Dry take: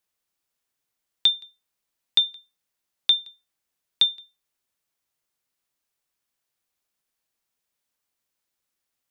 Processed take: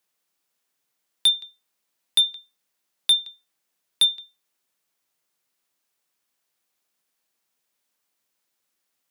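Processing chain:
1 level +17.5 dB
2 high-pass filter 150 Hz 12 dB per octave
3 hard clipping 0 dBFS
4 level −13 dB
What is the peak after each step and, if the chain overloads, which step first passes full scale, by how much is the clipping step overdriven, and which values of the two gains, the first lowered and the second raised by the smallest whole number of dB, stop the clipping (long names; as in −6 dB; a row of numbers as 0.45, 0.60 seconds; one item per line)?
+9.0, +9.5, 0.0, −13.0 dBFS
step 1, 9.5 dB
step 1 +7.5 dB, step 4 −3 dB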